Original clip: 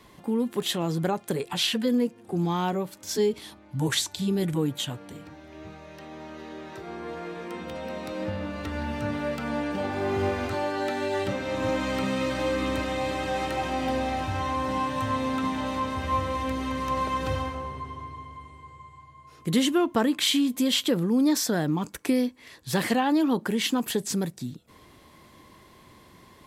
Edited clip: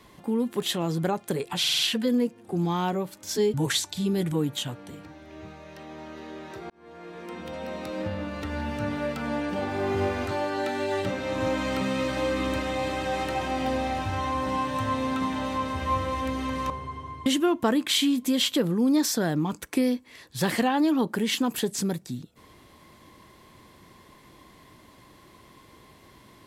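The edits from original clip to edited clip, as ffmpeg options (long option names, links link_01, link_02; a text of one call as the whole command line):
ffmpeg -i in.wav -filter_complex "[0:a]asplit=9[link_01][link_02][link_03][link_04][link_05][link_06][link_07][link_08][link_09];[link_01]atrim=end=1.642[link_10];[link_02]atrim=start=1.588:end=1.642[link_11];[link_03]atrim=start=1.588:end=1.642[link_12];[link_04]atrim=start=1.588:end=1.642[link_13];[link_05]atrim=start=1.588:end=3.342[link_14];[link_06]atrim=start=3.758:end=6.92,asetpts=PTS-STARTPTS,afade=type=out:start_time=3.158:duration=0.004:curve=hsin[link_15];[link_07]atrim=start=6.92:end=16.922,asetpts=PTS-STARTPTS,afade=type=in:duration=1.1:curve=qsin[link_16];[link_08]atrim=start=17.628:end=18.192[link_17];[link_09]atrim=start=19.578[link_18];[link_10][link_11]acrossfade=duration=0.004:curve1=hsin:curve2=hsin[link_19];[link_19][link_12]acrossfade=duration=0.004:curve1=hsin:curve2=hsin[link_20];[link_20][link_13]acrossfade=duration=0.004:curve1=hsin:curve2=hsin[link_21];[link_21][link_14]acrossfade=duration=0.004:curve1=hsin:curve2=hsin[link_22];[link_15][link_16]concat=n=2:v=0:a=1[link_23];[link_22][link_23]acrossfade=duration=0.004:curve1=hsin:curve2=hsin[link_24];[link_24][link_17]acrossfade=duration=0.004:curve1=hsin:curve2=hsin[link_25];[link_25][link_18]acrossfade=duration=0.004:curve1=hsin:curve2=hsin" out.wav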